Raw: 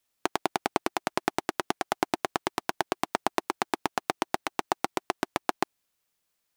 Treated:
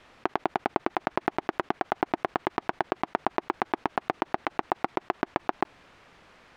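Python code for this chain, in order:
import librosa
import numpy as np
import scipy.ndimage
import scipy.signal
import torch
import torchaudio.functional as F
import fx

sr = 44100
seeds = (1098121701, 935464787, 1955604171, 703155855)

y = scipy.signal.sosfilt(scipy.signal.butter(2, 2000.0, 'lowpass', fs=sr, output='sos'), x)
y = fx.env_flatten(y, sr, amount_pct=50)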